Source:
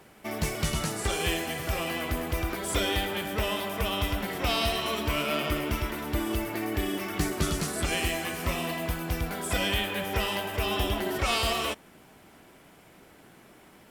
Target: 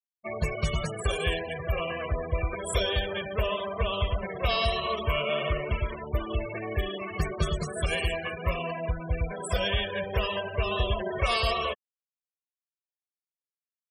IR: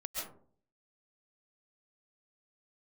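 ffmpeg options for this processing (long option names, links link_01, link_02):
-filter_complex "[0:a]asplit=2[link_01][link_02];[1:a]atrim=start_sample=2205,lowshelf=frequency=270:gain=-9[link_03];[link_02][link_03]afir=irnorm=-1:irlink=0,volume=-23.5dB[link_04];[link_01][link_04]amix=inputs=2:normalize=0,afftfilt=real='re*gte(hypot(re,im),0.0355)':imag='im*gte(hypot(re,im),0.0355)':win_size=1024:overlap=0.75,aecho=1:1:1.8:0.92,volume=-2dB"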